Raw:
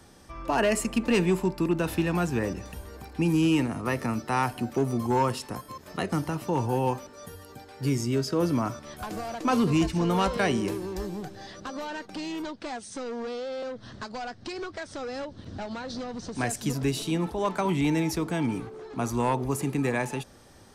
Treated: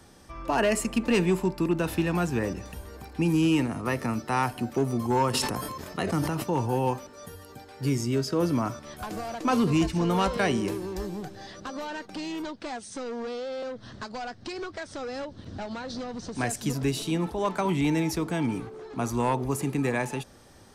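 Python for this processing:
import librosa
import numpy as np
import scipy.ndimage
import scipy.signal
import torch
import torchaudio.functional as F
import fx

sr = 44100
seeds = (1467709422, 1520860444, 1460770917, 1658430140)

y = fx.sustainer(x, sr, db_per_s=29.0, at=(5.33, 6.42), fade=0.02)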